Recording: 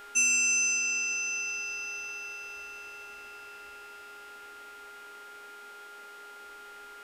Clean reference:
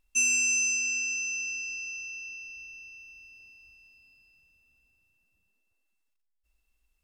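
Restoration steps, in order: de-hum 411.6 Hz, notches 37; notch 1400 Hz, Q 30; noise print and reduce 29 dB

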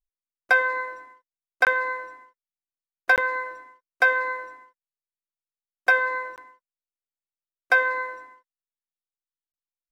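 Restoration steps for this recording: interpolate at 1.65/3.16/6.36/9.52, 18 ms

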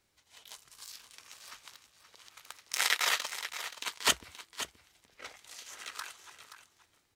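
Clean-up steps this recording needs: inverse comb 0.526 s -11.5 dB

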